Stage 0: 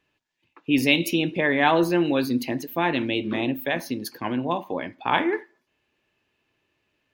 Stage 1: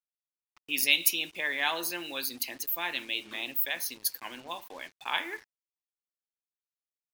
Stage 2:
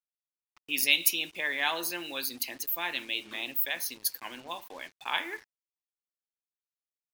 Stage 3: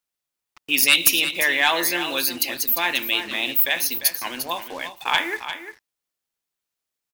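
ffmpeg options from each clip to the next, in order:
ffmpeg -i in.wav -af "aderivative,acrusher=bits=8:mix=0:aa=0.5,volume=5.5dB" out.wav
ffmpeg -i in.wav -af anull out.wav
ffmpeg -i in.wav -af "aeval=exprs='0.447*sin(PI/2*2.24*val(0)/0.447)':channel_layout=same,aecho=1:1:349:0.299" out.wav

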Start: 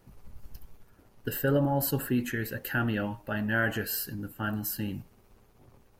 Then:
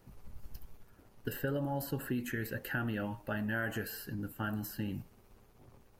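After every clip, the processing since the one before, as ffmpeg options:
ffmpeg -i in.wav -filter_complex "[0:a]acrossover=split=2700|5600[link_01][link_02][link_03];[link_01]acompressor=threshold=-31dB:ratio=4[link_04];[link_02]acompressor=threshold=-56dB:ratio=4[link_05];[link_03]acompressor=threshold=-45dB:ratio=4[link_06];[link_04][link_05][link_06]amix=inputs=3:normalize=0,volume=-1.5dB" out.wav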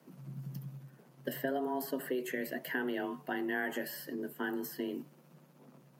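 ffmpeg -i in.wav -af "afreqshift=130" out.wav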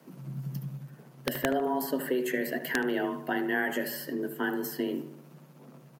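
ffmpeg -i in.wav -filter_complex "[0:a]aeval=exprs='(mod(11.2*val(0)+1,2)-1)/11.2':channel_layout=same,asplit=2[link_01][link_02];[link_02]adelay=75,lowpass=frequency=2300:poles=1,volume=-10.5dB,asplit=2[link_03][link_04];[link_04]adelay=75,lowpass=frequency=2300:poles=1,volume=0.54,asplit=2[link_05][link_06];[link_06]adelay=75,lowpass=frequency=2300:poles=1,volume=0.54,asplit=2[link_07][link_08];[link_08]adelay=75,lowpass=frequency=2300:poles=1,volume=0.54,asplit=2[link_09][link_10];[link_10]adelay=75,lowpass=frequency=2300:poles=1,volume=0.54,asplit=2[link_11][link_12];[link_12]adelay=75,lowpass=frequency=2300:poles=1,volume=0.54[link_13];[link_01][link_03][link_05][link_07][link_09][link_11][link_13]amix=inputs=7:normalize=0,volume=6dB" out.wav

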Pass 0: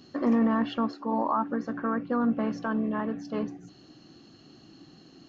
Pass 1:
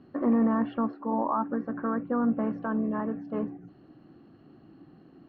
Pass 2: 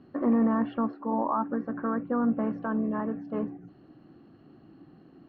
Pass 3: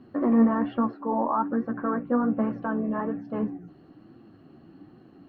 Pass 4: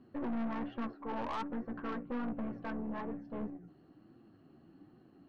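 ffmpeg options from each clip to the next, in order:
ffmpeg -i in.wav -af "lowpass=1900,aemphasis=mode=reproduction:type=75kf" out.wav
ffmpeg -i in.wav -af anull out.wav
ffmpeg -i in.wav -af "flanger=delay=7.8:depth=5.4:regen=40:speed=1.2:shape=triangular,volume=6.5dB" out.wav
ffmpeg -i in.wav -af "aeval=exprs='(tanh(22.4*val(0)+0.5)-tanh(0.5))/22.4':channel_layout=same,volume=-7dB" out.wav

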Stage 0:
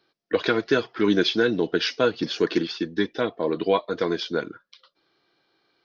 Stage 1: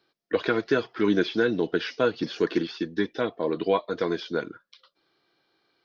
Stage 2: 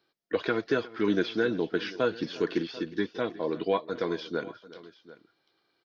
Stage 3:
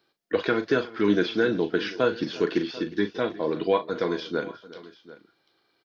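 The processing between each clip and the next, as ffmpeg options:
ffmpeg -i in.wav -filter_complex "[0:a]acrossover=split=2500[link_01][link_02];[link_02]acompressor=threshold=-36dB:ratio=4:attack=1:release=60[link_03];[link_01][link_03]amix=inputs=2:normalize=0,volume=-2dB" out.wav
ffmpeg -i in.wav -af "aecho=1:1:360|741:0.112|0.119,volume=-3.5dB" out.wav
ffmpeg -i in.wav -filter_complex "[0:a]asplit=2[link_01][link_02];[link_02]adelay=39,volume=-10.5dB[link_03];[link_01][link_03]amix=inputs=2:normalize=0,volume=3.5dB" out.wav

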